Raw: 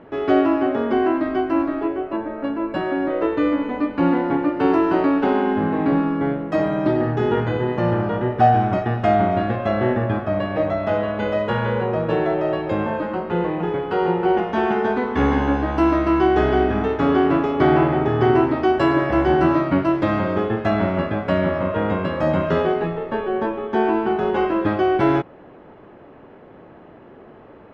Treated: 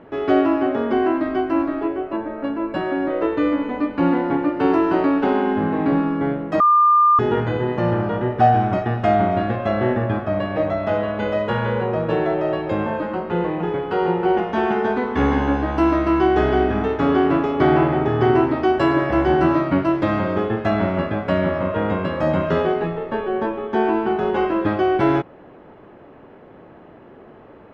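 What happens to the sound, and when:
6.60–7.19 s: bleep 1.2 kHz -10.5 dBFS

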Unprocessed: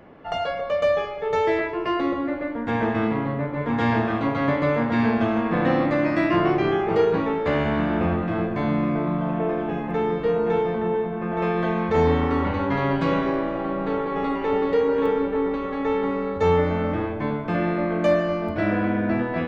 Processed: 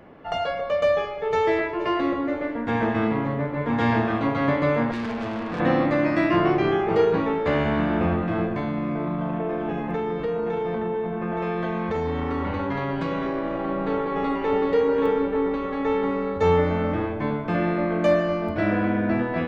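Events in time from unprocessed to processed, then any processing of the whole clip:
0.83–1.77 s: echo throw 480 ms, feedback 75%, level -17.5 dB
4.91–5.60 s: valve stage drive 26 dB, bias 0.7
8.52–13.68 s: compression, threshold -22 dBFS

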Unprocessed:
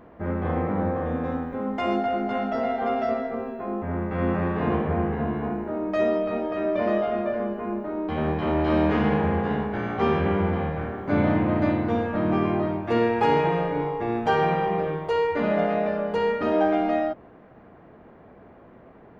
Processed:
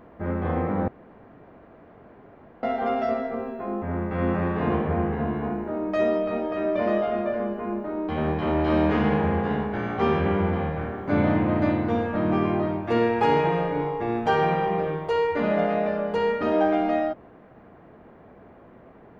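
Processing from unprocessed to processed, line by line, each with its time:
0.88–2.63 s: room tone

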